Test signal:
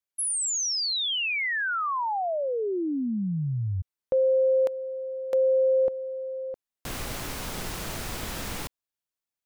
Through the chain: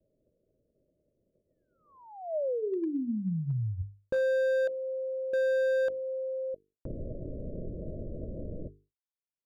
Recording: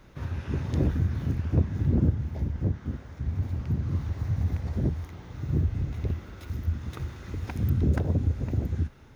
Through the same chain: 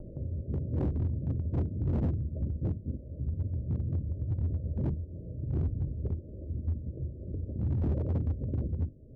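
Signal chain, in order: Chebyshev low-pass 630 Hz, order 8; upward compressor, threshold -29 dBFS; hum notches 50/100/150/200/250/300/350/400/450 Hz; expander -55 dBFS; hard clipper -23 dBFS; trim -2 dB

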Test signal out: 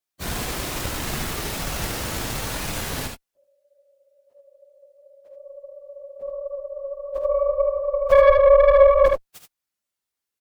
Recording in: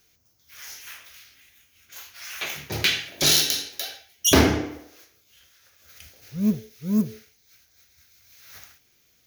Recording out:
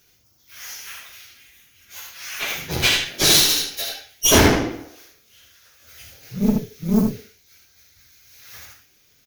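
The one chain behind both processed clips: phase randomisation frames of 50 ms; valve stage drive 17 dB, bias 0.75; early reflections 49 ms -11 dB, 76 ms -5 dB; trim +8 dB

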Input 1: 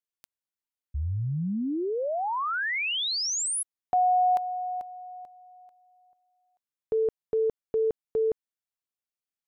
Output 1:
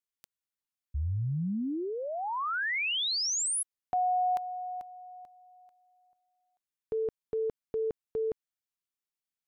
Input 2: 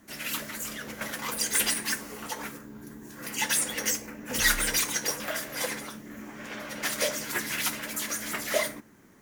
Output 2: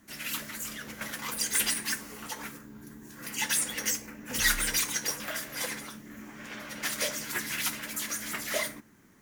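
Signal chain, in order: peaking EQ 550 Hz -5 dB 1.6 oct; trim -1.5 dB

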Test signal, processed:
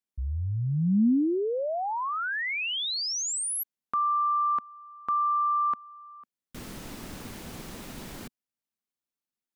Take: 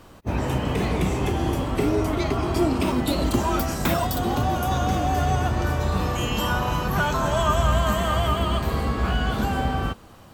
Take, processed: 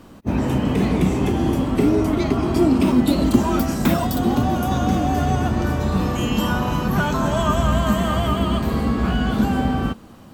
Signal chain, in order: peaking EQ 230 Hz +10 dB 1.1 oct

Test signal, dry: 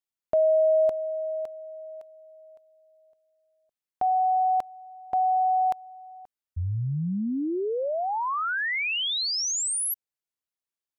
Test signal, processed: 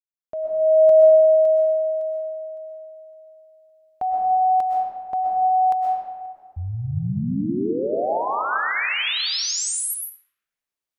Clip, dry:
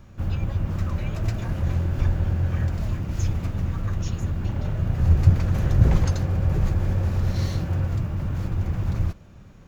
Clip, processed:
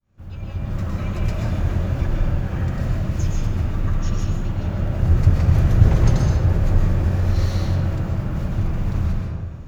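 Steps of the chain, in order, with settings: fade-in on the opening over 0.83 s; algorithmic reverb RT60 1.7 s, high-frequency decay 0.55×, pre-delay 85 ms, DRR -2 dB

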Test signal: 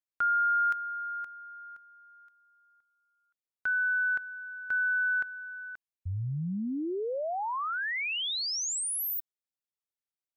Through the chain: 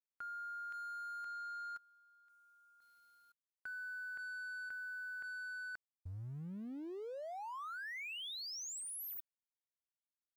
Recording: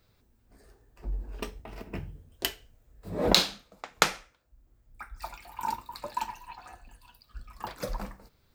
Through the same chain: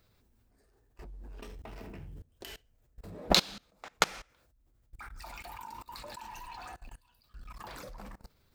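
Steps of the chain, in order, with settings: companding laws mixed up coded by mu; level held to a coarse grid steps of 23 dB; loudspeaker Doppler distortion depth 0.21 ms; trim +1 dB

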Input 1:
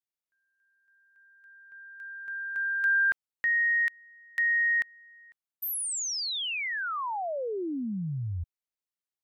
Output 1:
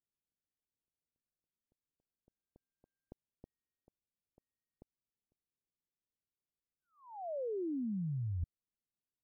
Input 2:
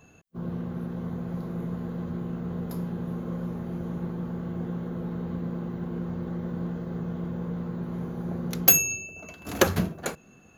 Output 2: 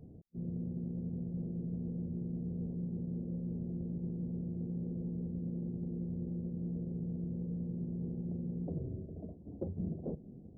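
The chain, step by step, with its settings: Gaussian low-pass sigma 19 samples; reverse; compression 10:1, threshold -42 dBFS; reverse; trim +6.5 dB

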